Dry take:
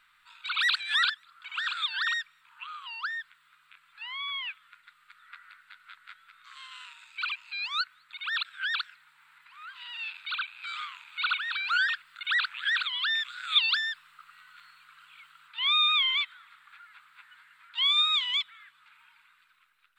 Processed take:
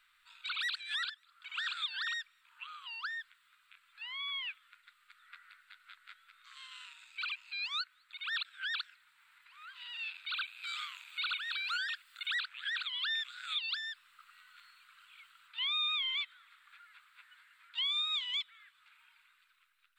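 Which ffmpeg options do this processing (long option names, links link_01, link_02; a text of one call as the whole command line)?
ffmpeg -i in.wav -filter_complex "[0:a]asettb=1/sr,asplit=3[link_01][link_02][link_03];[link_01]atrim=end=10.364[link_04];[link_02]atrim=start=10.36:end=12.43,asetpts=PTS-STARTPTS,afade=type=in:duration=0.004:curve=qsin,afade=type=out:start_time=2.066:duration=0.004:curve=qsin,highshelf=frequency=4400:gain=8.5[link_05];[link_03]atrim=start=12.426[link_06];[link_04][link_05]acrossfade=duration=0.004:curve1=hsin:curve2=qsin[link_07];[link_07][link_06]acrossfade=duration=0.004:curve1=qsin:curve2=hsin,equalizer=frequency=280:width=0.31:gain=-14.5,alimiter=level_in=1.5dB:limit=-24dB:level=0:latency=1:release=464,volume=-1.5dB,volume=-2dB" out.wav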